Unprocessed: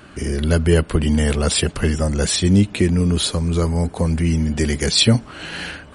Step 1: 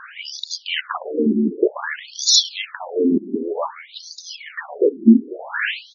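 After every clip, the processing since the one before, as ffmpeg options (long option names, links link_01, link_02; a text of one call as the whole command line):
ffmpeg -i in.wav -filter_complex "[0:a]asplit=4[link_01][link_02][link_03][link_04];[link_02]adelay=230,afreqshift=-100,volume=-21dB[link_05];[link_03]adelay=460,afreqshift=-200,volume=-28.3dB[link_06];[link_04]adelay=690,afreqshift=-300,volume=-35.7dB[link_07];[link_01][link_05][link_06][link_07]amix=inputs=4:normalize=0,acontrast=55,afftfilt=real='re*between(b*sr/1024,270*pow(5000/270,0.5+0.5*sin(2*PI*0.54*pts/sr))/1.41,270*pow(5000/270,0.5+0.5*sin(2*PI*0.54*pts/sr))*1.41)':imag='im*between(b*sr/1024,270*pow(5000/270,0.5+0.5*sin(2*PI*0.54*pts/sr))/1.41,270*pow(5000/270,0.5+0.5*sin(2*PI*0.54*pts/sr))*1.41)':win_size=1024:overlap=0.75,volume=4.5dB" out.wav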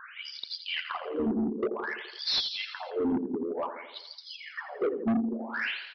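ffmpeg -i in.wav -af "aecho=1:1:84|168|252|336|420|504:0.282|0.161|0.0916|0.0522|0.0298|0.017,aresample=11025,asoftclip=type=tanh:threshold=-15.5dB,aresample=44100,volume=-7.5dB" out.wav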